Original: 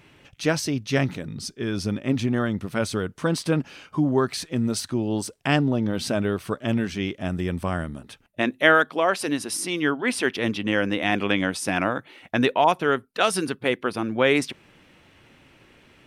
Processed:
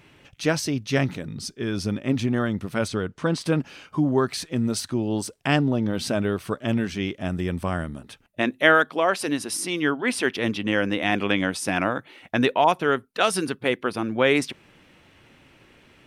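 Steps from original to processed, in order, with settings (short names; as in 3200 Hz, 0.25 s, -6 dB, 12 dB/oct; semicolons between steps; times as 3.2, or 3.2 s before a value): 2.88–3.41 air absorption 54 m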